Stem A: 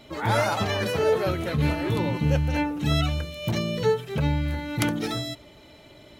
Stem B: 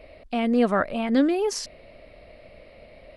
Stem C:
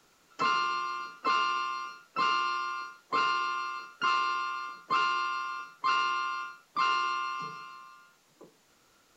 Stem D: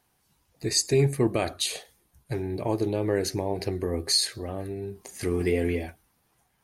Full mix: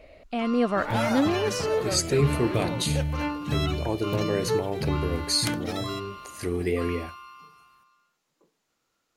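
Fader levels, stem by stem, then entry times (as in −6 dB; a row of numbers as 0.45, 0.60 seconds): −4.0, −3.0, −12.0, −1.5 decibels; 0.65, 0.00, 0.00, 1.20 seconds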